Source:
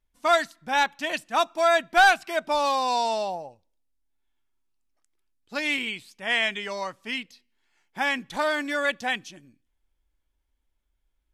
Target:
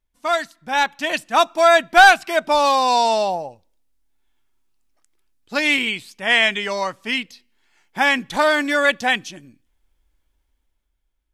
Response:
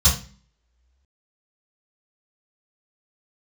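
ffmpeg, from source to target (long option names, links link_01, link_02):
-af "dynaudnorm=framelen=160:gausssize=11:maxgain=9dB"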